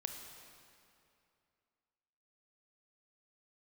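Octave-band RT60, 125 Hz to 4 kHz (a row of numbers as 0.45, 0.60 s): 2.7, 2.6, 2.6, 2.6, 2.3, 2.0 s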